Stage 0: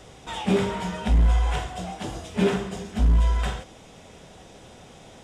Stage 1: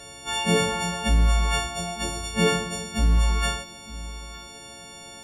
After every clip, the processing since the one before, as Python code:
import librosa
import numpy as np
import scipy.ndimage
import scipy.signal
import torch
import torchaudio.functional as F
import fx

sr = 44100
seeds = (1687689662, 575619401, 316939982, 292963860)

y = fx.freq_snap(x, sr, grid_st=4)
y = y + 10.0 ** (-17.5 / 20.0) * np.pad(y, (int(910 * sr / 1000.0), 0))[:len(y)]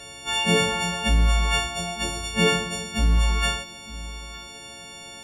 y = fx.peak_eq(x, sr, hz=2700.0, db=5.5, octaves=0.86)